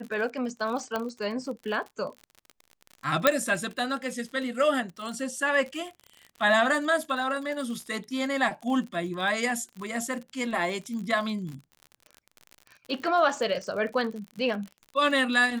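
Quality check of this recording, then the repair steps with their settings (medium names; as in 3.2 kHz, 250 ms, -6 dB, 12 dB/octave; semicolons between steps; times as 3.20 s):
crackle 51 per s -35 dBFS
0.96 s: pop -16 dBFS
3.27 s: pop -5 dBFS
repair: de-click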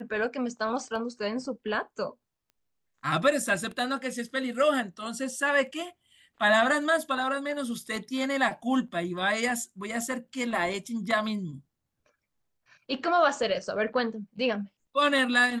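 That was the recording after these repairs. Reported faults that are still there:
0.96 s: pop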